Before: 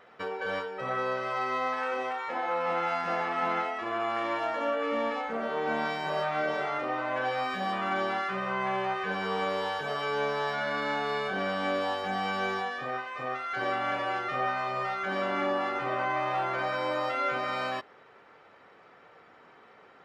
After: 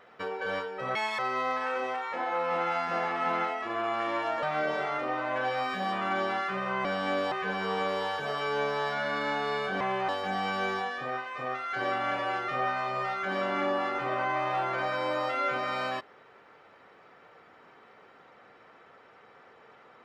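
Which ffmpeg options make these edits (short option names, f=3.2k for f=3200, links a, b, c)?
-filter_complex "[0:a]asplit=8[a][b][c][d][e][f][g][h];[a]atrim=end=0.954[i];[b]atrim=start=0.95:end=1.35,asetpts=PTS-STARTPTS,asetrate=74529,aresample=44100[j];[c]atrim=start=1.346:end=4.592[k];[d]atrim=start=6.228:end=8.652[l];[e]atrim=start=11.418:end=11.892[m];[f]atrim=start=8.928:end=11.422[n];[g]atrim=start=8.648:end=8.932[o];[h]atrim=start=11.888[p];[i][j]acrossfade=d=0.004:c1=hsin:c2=hsin[q];[q][k]acrossfade=d=0.004:c1=hsin:c2=hsin[r];[r][l]acrossfade=d=0.004:c1=hsin:c2=hsin[s];[s][m]acrossfade=d=0.004:c1=hsin:c2=hsin[t];[t][n]acrossfade=d=0.004:c1=hsin:c2=hsin[u];[u][o]acrossfade=d=0.004:c1=hsin:c2=hsin[v];[v][p]acrossfade=d=0.004:c1=hsin:c2=hsin"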